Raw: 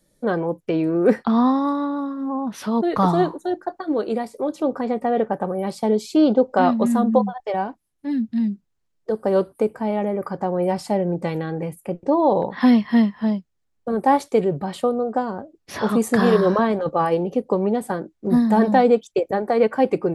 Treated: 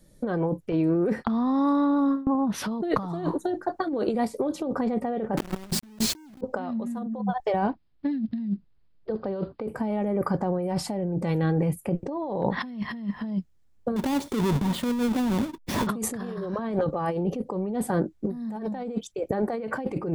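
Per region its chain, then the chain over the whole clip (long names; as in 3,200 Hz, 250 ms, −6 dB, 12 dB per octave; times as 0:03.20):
0:00.72–0:02.35: noise gate with hold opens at −21 dBFS, closes at −24 dBFS + downward compressor 3 to 1, threshold −25 dBFS
0:05.37–0:06.41: Chebyshev high-pass filter 180 Hz, order 3 + low shelf with overshoot 420 Hz +10 dB, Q 3 + log-companded quantiser 2 bits
0:07.66–0:09.68: one scale factor per block 7 bits + Butterworth low-pass 4,900 Hz 72 dB per octave
0:13.96–0:15.87: each half-wave held at its own peak + downward compressor 2.5 to 1, threshold −35 dBFS + hollow resonant body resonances 240/940/3,500 Hz, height 10 dB, ringing for 30 ms
whole clip: low-shelf EQ 200 Hz +10 dB; compressor whose output falls as the input rises −24 dBFS, ratio −1; level −6 dB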